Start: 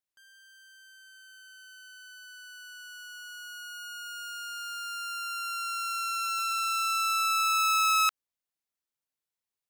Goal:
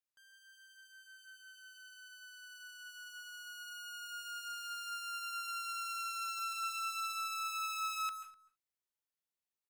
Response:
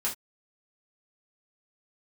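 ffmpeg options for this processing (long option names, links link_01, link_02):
-filter_complex "[0:a]acompressor=threshold=-32dB:ratio=6,asplit=2[link_01][link_02];[link_02]adelay=250,highpass=300,lowpass=3400,asoftclip=type=hard:threshold=-38.5dB,volume=-16dB[link_03];[link_01][link_03]amix=inputs=2:normalize=0,asplit=2[link_04][link_05];[1:a]atrim=start_sample=2205,adelay=132[link_06];[link_05][link_06]afir=irnorm=-1:irlink=0,volume=-14dB[link_07];[link_04][link_07]amix=inputs=2:normalize=0,volume=-6dB"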